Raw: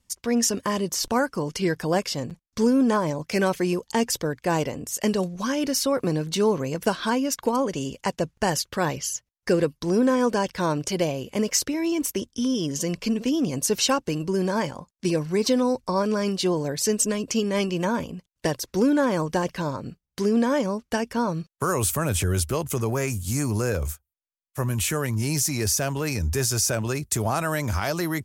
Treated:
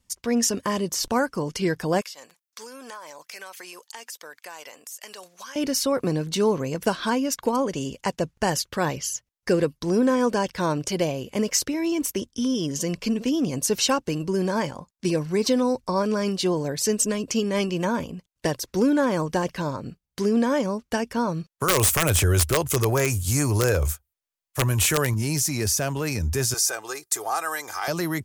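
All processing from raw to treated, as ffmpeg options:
-filter_complex "[0:a]asettb=1/sr,asplit=3[a][b][c];[a]atrim=end=2.014[d];[b]atrim=start=2.01:end=5.56,asetpts=PTS-STARTPTS,afade=t=in:d=0.004:c=qsin,afade=t=out:st=3.546:d=0.004:c=qsin,highpass=1k,highshelf=f=11k:g=9.5,acompressor=threshold=-37dB:ratio=4:attack=3.2:release=140:knee=1:detection=peak[e];[c]atrim=start=5.556[f];[d][e]acrossfade=d=0.004:c1=hsin:c2=qsin[g];[g][f]acrossfade=d=0.004:c1=qsin:c2=hsin,asettb=1/sr,asplit=3[h][i][j];[h]atrim=end=21.684[k];[i]atrim=start=21.68:end=25.14,asetpts=PTS-STARTPTS,afade=t=in:d=0.004:c=qsin,afade=t=out:st=3.456:d=0.004:c=qsin,equalizer=f=210:w=2.3:g=-9.5,acontrast=24,aeval=exprs='(mod(3.35*val(0)+1,2)-1)/3.35':c=same[l];[j]atrim=start=25.136[m];[k][l]acrossfade=d=0.004:c1=hsin:c2=qsin[n];[n][m]acrossfade=d=0.004:c1=qsin:c2=hsin,asettb=1/sr,asplit=3[o][p][q];[o]atrim=end=26.544[r];[p]atrim=start=26.54:end=27.88,asetpts=PTS-STARTPTS,afade=t=in:d=0.004:c=qsin,afade=t=out:st=1.336:d=0.004:c=qsin,highpass=670,equalizer=f=2.7k:t=o:w=0.67:g=-6.5,aecho=1:1:2.5:0.63,atrim=end_sample=59094[s];[q]atrim=start=27.876[t];[r][s]acrossfade=d=0.004:c1=hsin:c2=qsin[u];[u][t]acrossfade=d=0.004:c1=qsin:c2=hsin"

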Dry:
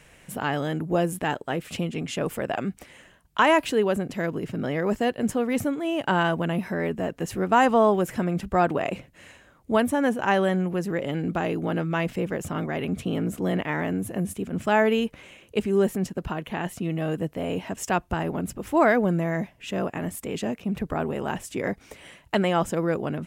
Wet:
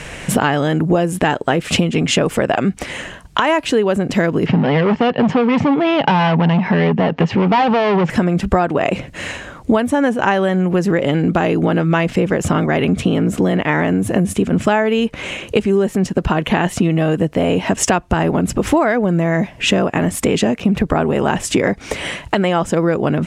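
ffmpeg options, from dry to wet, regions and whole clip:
-filter_complex "[0:a]asettb=1/sr,asplit=3[a][b][c];[a]atrim=end=4.464[d];[b]atrim=start=4.46:end=8.1,asetpts=PTS-STARTPTS,afade=t=in:d=0.004:c=qsin,afade=t=out:st=3.636:d=0.004:c=qsin,acontrast=61,asoftclip=type=hard:threshold=-20dB,highpass=140,equalizer=f=160:t=q:w=4:g=7,equalizer=f=330:t=q:w=4:g=-6,equalizer=f=600:t=q:w=4:g=-4,equalizer=f=850:t=q:w=4:g=6,equalizer=f=1.5k:t=q:w=4:g=-5,equalizer=f=3.8k:t=q:w=4:g=-5,lowpass=f=4k:w=0.5412,lowpass=f=4k:w=1.3066[e];[c]atrim=start=8.096[f];[d][e]acrossfade=d=0.004:c1=hsin:c2=qsin[g];[g][f]acrossfade=d=0.004:c1=qsin:c2=hsin,lowpass=8.3k,acompressor=threshold=-34dB:ratio=12,alimiter=level_in=23.5dB:limit=-1dB:release=50:level=0:latency=1,volume=-1dB"

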